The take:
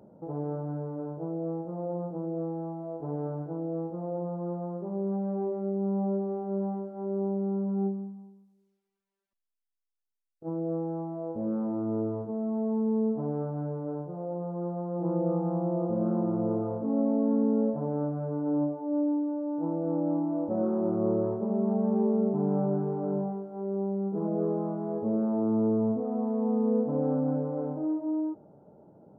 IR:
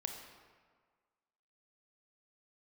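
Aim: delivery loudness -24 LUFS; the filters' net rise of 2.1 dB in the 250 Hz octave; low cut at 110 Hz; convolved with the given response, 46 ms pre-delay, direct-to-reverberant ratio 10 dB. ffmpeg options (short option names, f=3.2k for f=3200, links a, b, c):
-filter_complex "[0:a]highpass=110,equalizer=f=250:t=o:g=3,asplit=2[a][b];[1:a]atrim=start_sample=2205,adelay=46[c];[b][c]afir=irnorm=-1:irlink=0,volume=-9.5dB[d];[a][d]amix=inputs=2:normalize=0,volume=3.5dB"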